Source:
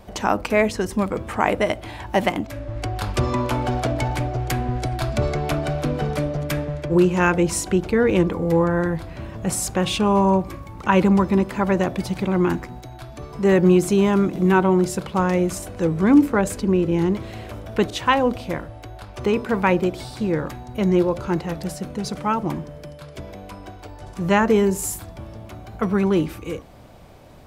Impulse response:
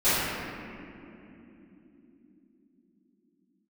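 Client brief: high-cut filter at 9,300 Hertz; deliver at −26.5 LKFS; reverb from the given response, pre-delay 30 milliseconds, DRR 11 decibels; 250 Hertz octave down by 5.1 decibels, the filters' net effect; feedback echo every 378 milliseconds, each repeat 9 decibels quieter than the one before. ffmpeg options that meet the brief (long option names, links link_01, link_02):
-filter_complex "[0:a]lowpass=9300,equalizer=frequency=250:width_type=o:gain=-8,aecho=1:1:378|756|1134|1512:0.355|0.124|0.0435|0.0152,asplit=2[link_01][link_02];[1:a]atrim=start_sample=2205,adelay=30[link_03];[link_02][link_03]afir=irnorm=-1:irlink=0,volume=-28.5dB[link_04];[link_01][link_04]amix=inputs=2:normalize=0,volume=-3dB"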